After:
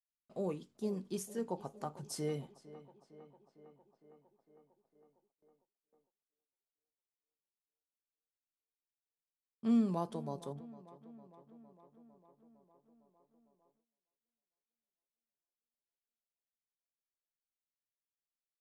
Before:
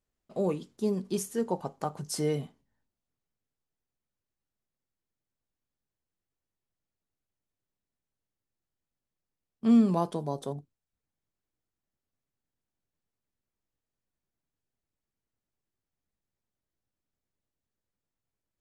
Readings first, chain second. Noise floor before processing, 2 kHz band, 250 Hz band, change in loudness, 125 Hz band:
under -85 dBFS, n/a, -8.5 dB, -8.5 dB, -8.5 dB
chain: on a send: tape echo 0.456 s, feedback 76%, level -16.5 dB, low-pass 3000 Hz; on the sum: gate with hold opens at -57 dBFS; gain -8.5 dB

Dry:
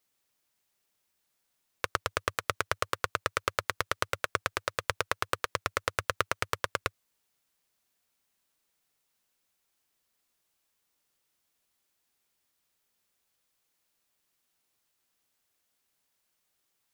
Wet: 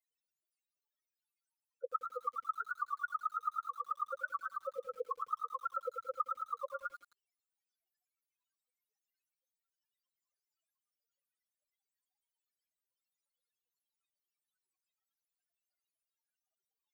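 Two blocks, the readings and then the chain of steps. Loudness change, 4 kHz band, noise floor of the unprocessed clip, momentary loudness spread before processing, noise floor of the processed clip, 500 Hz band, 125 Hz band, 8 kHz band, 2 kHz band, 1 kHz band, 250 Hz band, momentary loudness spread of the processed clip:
-7.0 dB, under -30 dB, -78 dBFS, 2 LU, under -85 dBFS, -8.0 dB, under -40 dB, under -25 dB, -12.5 dB, -3.5 dB, under -30 dB, 5 LU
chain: loudest bins only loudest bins 4; inverse Chebyshev high-pass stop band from 210 Hz, stop band 40 dB; lo-fi delay 87 ms, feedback 35%, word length 10-bit, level -9.5 dB; gain +3.5 dB

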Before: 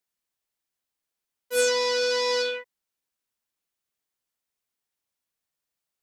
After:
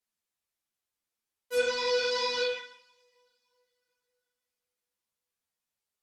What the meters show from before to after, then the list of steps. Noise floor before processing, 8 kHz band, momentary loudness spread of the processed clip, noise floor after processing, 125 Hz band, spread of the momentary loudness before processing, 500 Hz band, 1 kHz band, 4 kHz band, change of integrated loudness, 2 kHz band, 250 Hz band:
under -85 dBFS, -12.0 dB, 6 LU, under -85 dBFS, n/a, 7 LU, -4.5 dB, -3.5 dB, -4.0 dB, -5.0 dB, -4.0 dB, -4.5 dB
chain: two-slope reverb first 0.79 s, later 3.5 s, from -27 dB, DRR 8 dB; treble ducked by the level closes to 1300 Hz, closed at -14.5 dBFS; ensemble effect

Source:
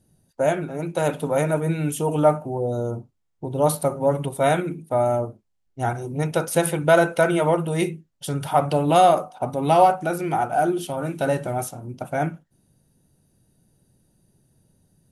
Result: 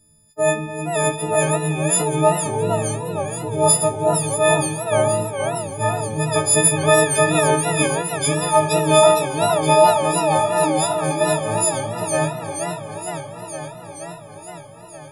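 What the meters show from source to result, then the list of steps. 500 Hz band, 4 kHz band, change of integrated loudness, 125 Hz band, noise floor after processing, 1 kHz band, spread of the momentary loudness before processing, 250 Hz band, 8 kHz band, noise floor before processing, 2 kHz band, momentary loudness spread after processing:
+3.5 dB, +10.0 dB, +4.0 dB, +3.0 dB, -40 dBFS, +2.5 dB, 12 LU, +1.5 dB, +15.5 dB, -70 dBFS, +5.0 dB, 15 LU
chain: frequency quantiser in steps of 6 st; low shelf 85 Hz +10.5 dB; spring tank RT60 2.9 s, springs 52 ms, chirp 70 ms, DRR 14 dB; warbling echo 0.468 s, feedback 74%, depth 209 cents, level -8 dB; gain -1 dB

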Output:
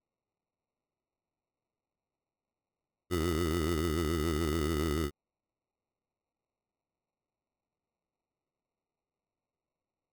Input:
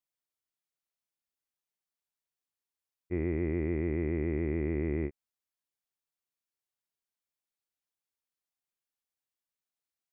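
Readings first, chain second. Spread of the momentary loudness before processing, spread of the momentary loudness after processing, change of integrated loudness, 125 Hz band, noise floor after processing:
4 LU, 4 LU, +0.5 dB, 0.0 dB, under -85 dBFS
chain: sample-and-hold 27×

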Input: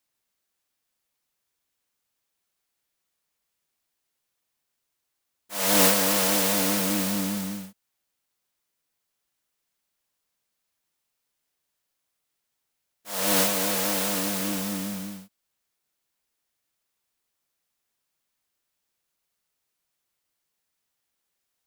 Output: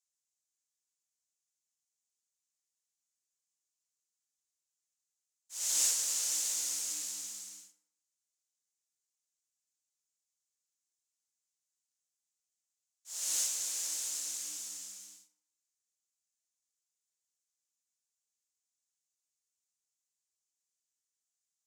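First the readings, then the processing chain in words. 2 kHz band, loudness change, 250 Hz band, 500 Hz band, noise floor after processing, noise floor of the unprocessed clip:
-20.5 dB, -9.5 dB, under -35 dB, -32.5 dB, under -85 dBFS, -80 dBFS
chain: band-pass 6900 Hz, Q 3.4; FDN reverb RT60 0.75 s, low-frequency decay 0.85×, high-frequency decay 0.6×, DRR 7 dB

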